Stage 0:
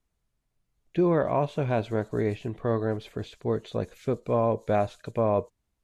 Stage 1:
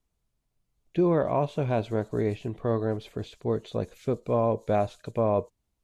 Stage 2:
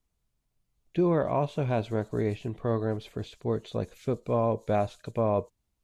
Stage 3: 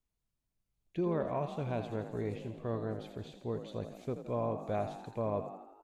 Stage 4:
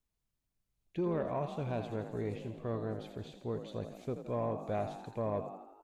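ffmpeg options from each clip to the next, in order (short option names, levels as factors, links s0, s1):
-af "equalizer=f=1700:t=o:w=0.89:g=-4"
-af "equalizer=f=470:t=o:w=2:g=-2"
-filter_complex "[0:a]asplit=8[s0][s1][s2][s3][s4][s5][s6][s7];[s1]adelay=83,afreqshift=45,volume=0.316[s8];[s2]adelay=166,afreqshift=90,volume=0.186[s9];[s3]adelay=249,afreqshift=135,volume=0.11[s10];[s4]adelay=332,afreqshift=180,volume=0.0653[s11];[s5]adelay=415,afreqshift=225,volume=0.0385[s12];[s6]adelay=498,afreqshift=270,volume=0.0226[s13];[s7]adelay=581,afreqshift=315,volume=0.0133[s14];[s0][s8][s9][s10][s11][s12][s13][s14]amix=inputs=8:normalize=0,volume=0.376"
-af "asoftclip=type=tanh:threshold=0.0708"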